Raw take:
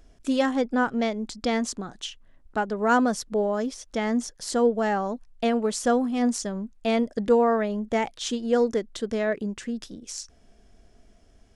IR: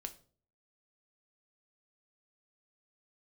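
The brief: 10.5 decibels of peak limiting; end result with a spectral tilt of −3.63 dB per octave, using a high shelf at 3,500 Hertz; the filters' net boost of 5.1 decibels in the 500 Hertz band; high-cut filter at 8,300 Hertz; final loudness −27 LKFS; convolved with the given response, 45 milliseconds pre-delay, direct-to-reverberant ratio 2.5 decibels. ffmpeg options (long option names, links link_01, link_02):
-filter_complex "[0:a]lowpass=8300,equalizer=frequency=500:width_type=o:gain=5.5,highshelf=frequency=3500:gain=8,alimiter=limit=-16dB:level=0:latency=1,asplit=2[link_01][link_02];[1:a]atrim=start_sample=2205,adelay=45[link_03];[link_02][link_03]afir=irnorm=-1:irlink=0,volume=1dB[link_04];[link_01][link_04]amix=inputs=2:normalize=0,volume=-3dB"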